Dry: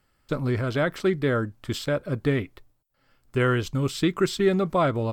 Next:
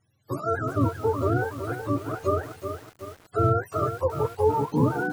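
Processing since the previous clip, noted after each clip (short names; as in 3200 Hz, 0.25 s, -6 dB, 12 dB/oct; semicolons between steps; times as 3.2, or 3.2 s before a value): spectrum mirrored in octaves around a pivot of 410 Hz; lo-fi delay 0.373 s, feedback 55%, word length 7-bit, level -8 dB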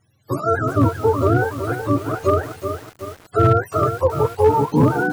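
overloaded stage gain 14.5 dB; gain +7.5 dB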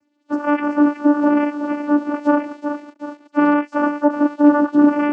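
vocoder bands 8, saw 293 Hz; gain +2.5 dB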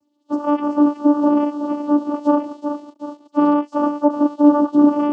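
band shelf 1900 Hz -15 dB 1 oct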